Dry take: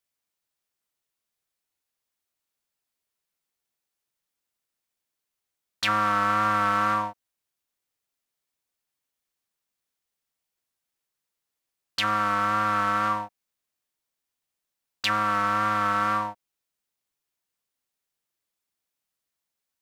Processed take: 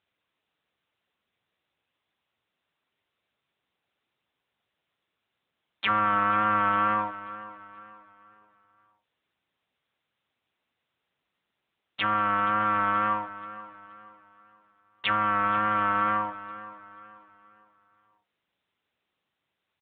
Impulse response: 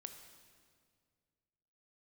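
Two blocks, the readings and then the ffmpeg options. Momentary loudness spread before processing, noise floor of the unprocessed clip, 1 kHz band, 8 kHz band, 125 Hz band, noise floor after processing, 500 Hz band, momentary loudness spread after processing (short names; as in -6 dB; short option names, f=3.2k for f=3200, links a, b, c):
8 LU, -85 dBFS, -0.5 dB, under -30 dB, -3.0 dB, -83 dBFS, -1.0 dB, 18 LU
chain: -af "aecho=1:1:478|956|1434|1912:0.168|0.0672|0.0269|0.0107" -ar 8000 -c:a libopencore_amrnb -b:a 10200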